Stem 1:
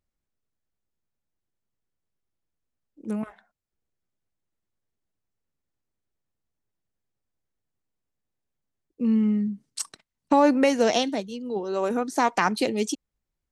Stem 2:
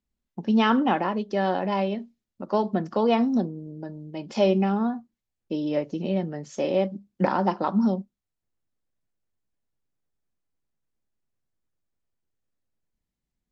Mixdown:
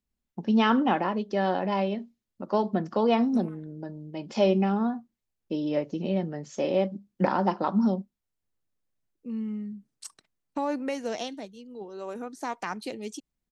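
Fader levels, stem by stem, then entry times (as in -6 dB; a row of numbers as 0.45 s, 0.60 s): -11.0 dB, -1.5 dB; 0.25 s, 0.00 s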